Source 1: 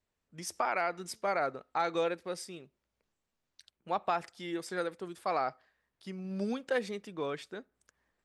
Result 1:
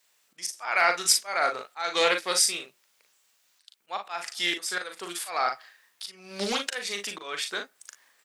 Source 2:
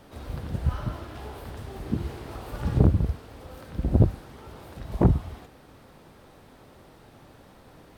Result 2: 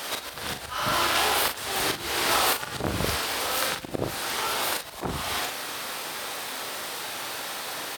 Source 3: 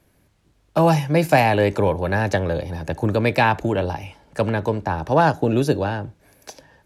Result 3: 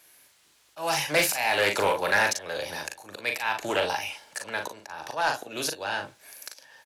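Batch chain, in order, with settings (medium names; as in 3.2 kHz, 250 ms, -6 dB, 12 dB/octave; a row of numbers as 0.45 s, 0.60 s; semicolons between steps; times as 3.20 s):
slow attack 358 ms; tilt EQ +4 dB/octave; on a send: early reflections 40 ms -6 dB, 55 ms -14 dB; on the sum: overdrive pedal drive 10 dB, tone 7.5 kHz, clips at -8 dBFS; loudspeaker Doppler distortion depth 0.22 ms; normalise loudness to -27 LUFS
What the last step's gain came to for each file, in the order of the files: +8.0 dB, +14.0 dB, -3.5 dB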